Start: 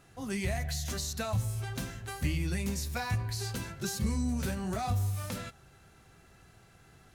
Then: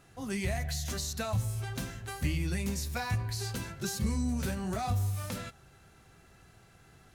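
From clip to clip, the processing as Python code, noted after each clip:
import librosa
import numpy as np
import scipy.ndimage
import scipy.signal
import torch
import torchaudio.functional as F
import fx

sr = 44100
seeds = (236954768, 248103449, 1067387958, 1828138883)

y = x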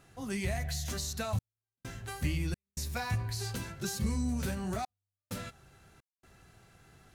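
y = fx.step_gate(x, sr, bpm=65, pattern='xxxxxx..xxx.xxx', floor_db=-60.0, edge_ms=4.5)
y = F.gain(torch.from_numpy(y), -1.0).numpy()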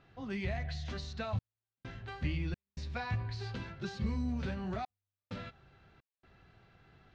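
y = scipy.signal.sosfilt(scipy.signal.butter(4, 4100.0, 'lowpass', fs=sr, output='sos'), x)
y = F.gain(torch.from_numpy(y), -2.5).numpy()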